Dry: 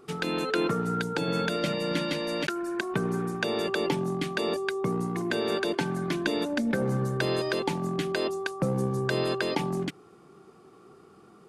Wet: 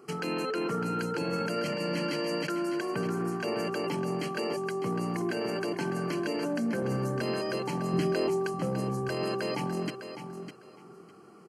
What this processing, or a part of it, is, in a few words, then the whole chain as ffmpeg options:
PA system with an anti-feedback notch: -filter_complex "[0:a]highpass=120,asuperstop=centerf=3600:order=20:qfactor=5.2,alimiter=limit=-23.5dB:level=0:latency=1:release=16,asettb=1/sr,asplit=3[link_01][link_02][link_03];[link_01]atrim=end=7.934[link_04];[link_02]atrim=start=7.93:end=8.62,asetpts=PTS-STARTPTS,afade=type=in:duration=0.004:curve=qsin,afade=type=out:start_time=0.686:duration=0.004:curve=qsin,lowshelf=frequency=390:gain=8.5[link_05];[link_03]atrim=start=8.616[link_06];[link_04][link_05]acrossfade=duration=0.004:curve1=hsin:curve2=qsin[link_07];[link_07][link_06]acrossfade=duration=0.004:curve1=qsin:curve2=hsin,aecho=1:1:604|1208|1812:0.335|0.0636|0.0121"

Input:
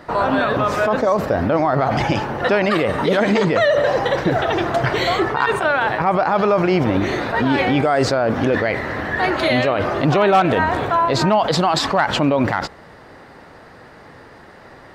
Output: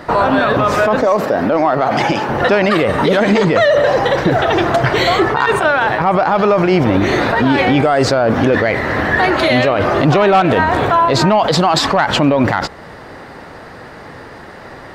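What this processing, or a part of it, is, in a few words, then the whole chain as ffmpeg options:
soft clipper into limiter: -filter_complex "[0:a]asettb=1/sr,asplit=3[link_01][link_02][link_03];[link_01]atrim=end=1.034[link_04];[link_02]atrim=start=1.03:end=2.29,asetpts=PTS-STARTPTS,afade=type=in:duration=0.004:curve=qsin,afade=type=out:start_time=1.256:duration=0.004:curve=qsin,highpass=200[link_05];[link_03]atrim=start=2.286[link_06];[link_04][link_05]acrossfade=duration=0.004:curve1=hsin:curve2=qsin[link_07];[link_07][link_06]acrossfade=duration=0.004:curve1=qsin:curve2=hsin,asoftclip=type=tanh:threshold=-6dB,alimiter=limit=-13dB:level=0:latency=1:release=276,volume=8.5dB"

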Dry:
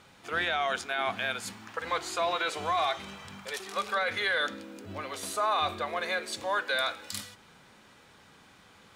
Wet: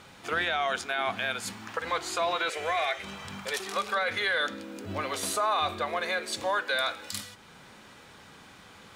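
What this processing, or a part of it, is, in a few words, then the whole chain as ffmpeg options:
clipper into limiter: -filter_complex "[0:a]asettb=1/sr,asplit=3[link_01][link_02][link_03];[link_01]atrim=end=2.504[link_04];[link_02]atrim=start=2.5:end=3.04,asetpts=PTS-STARTPTS,afade=type=in:duration=0.004:curve=qsin,afade=type=out:start_time=0.536:duration=0.004:curve=qsin,equalizer=frequency=125:width_type=o:width=1:gain=-11,equalizer=frequency=250:width_type=o:width=1:gain=-12,equalizer=frequency=500:width_type=o:width=1:gain=7,equalizer=frequency=1000:width_type=o:width=1:gain=-10,equalizer=frequency=2000:width_type=o:width=1:gain=9,equalizer=frequency=4000:width_type=o:width=1:gain=-5[link_05];[link_03]atrim=start=3.036[link_06];[link_04][link_05]acrossfade=duration=0.004:curve1=hsin:curve2=qsin[link_07];[link_07][link_06]acrossfade=duration=0.004:curve1=qsin:curve2=hsin,asoftclip=type=hard:threshold=-19.5dB,alimiter=level_in=0.5dB:limit=-24dB:level=0:latency=1:release=465,volume=-0.5dB,volume=5.5dB"

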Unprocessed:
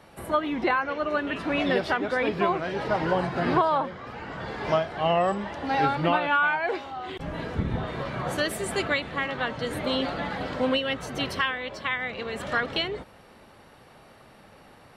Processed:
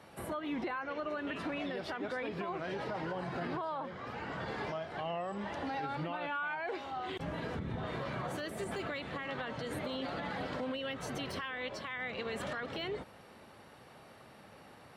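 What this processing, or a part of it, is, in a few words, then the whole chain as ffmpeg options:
podcast mastering chain: -af "highpass=72,deesser=0.9,acompressor=threshold=-30dB:ratio=3,alimiter=level_in=2dB:limit=-24dB:level=0:latency=1:release=47,volume=-2dB,volume=-3dB" -ar 48000 -c:a libmp3lame -b:a 96k

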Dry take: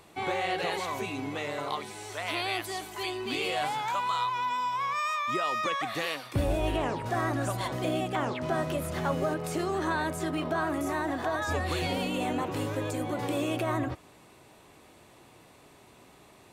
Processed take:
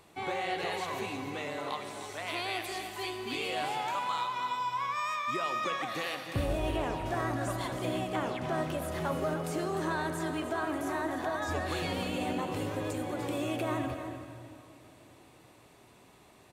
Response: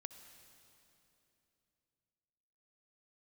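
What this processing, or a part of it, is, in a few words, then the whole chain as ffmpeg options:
cave: -filter_complex "[0:a]aecho=1:1:302:0.299[link_01];[1:a]atrim=start_sample=2205[link_02];[link_01][link_02]afir=irnorm=-1:irlink=0,volume=1.5dB"

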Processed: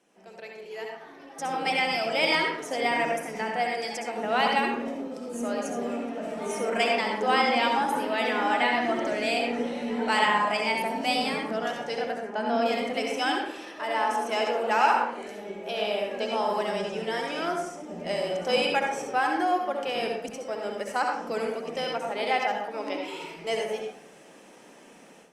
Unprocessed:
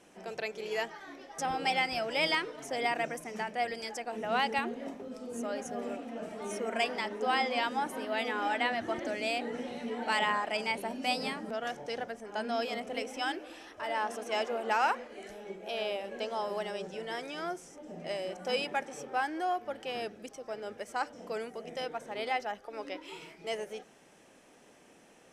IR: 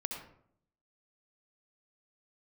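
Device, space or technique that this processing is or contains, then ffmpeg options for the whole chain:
far-field microphone of a smart speaker: -filter_complex "[0:a]asettb=1/sr,asplit=3[link_01][link_02][link_03];[link_01]atrim=end=12.184[link_04];[link_02]atrim=start=12.18:end=12.66,asetpts=PTS-STARTPTS,afade=type=in:duration=0.004:curve=qsin,afade=type=out:start_time=0.476:duration=0.004:curve=qsin,equalizer=frequency=11000:width_type=o:width=2.5:gain=-11[link_05];[link_03]atrim=start=12.656[link_06];[link_04][link_05]acrossfade=duration=0.004:curve1=hsin:curve2=qsin[link_07];[link_07][link_06]acrossfade=duration=0.004:curve1=qsin:curve2=hsin[link_08];[1:a]atrim=start_sample=2205[link_09];[link_08][link_09]afir=irnorm=-1:irlink=0,highpass=frequency=150:width=0.5412,highpass=frequency=150:width=1.3066,dynaudnorm=framelen=840:gausssize=3:maxgain=14.5dB,volume=-7dB" -ar 48000 -c:a libopus -b:a 48k

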